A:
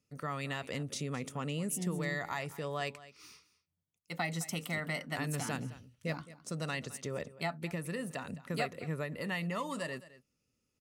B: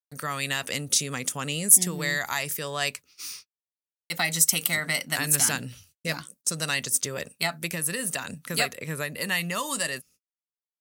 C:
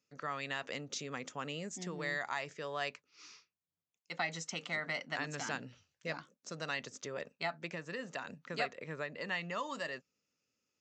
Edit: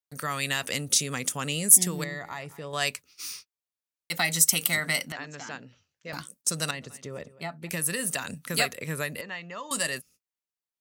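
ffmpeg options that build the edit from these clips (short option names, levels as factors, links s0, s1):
-filter_complex "[0:a]asplit=2[s0][s1];[2:a]asplit=2[s2][s3];[1:a]asplit=5[s4][s5][s6][s7][s8];[s4]atrim=end=2.042[s9];[s0]atrim=start=2.038:end=2.732[s10];[s5]atrim=start=2.728:end=5.122[s11];[s2]atrim=start=5.118:end=6.132[s12];[s6]atrim=start=6.128:end=6.712[s13];[s1]atrim=start=6.708:end=7.692[s14];[s7]atrim=start=7.688:end=9.212[s15];[s3]atrim=start=9.208:end=9.712[s16];[s8]atrim=start=9.708[s17];[s9][s10]acrossfade=d=0.004:c1=hsin:c2=hsin[s18];[s18][s11]acrossfade=d=0.004:c1=hsin:c2=hsin[s19];[s19][s12]acrossfade=d=0.004:c1=hsin:c2=hsin[s20];[s20][s13]acrossfade=d=0.004:c1=hsin:c2=hsin[s21];[s21][s14]acrossfade=d=0.004:c1=hsin:c2=hsin[s22];[s22][s15]acrossfade=d=0.004:c1=hsin:c2=hsin[s23];[s23][s16]acrossfade=d=0.004:c1=hsin:c2=hsin[s24];[s24][s17]acrossfade=d=0.004:c1=hsin:c2=hsin"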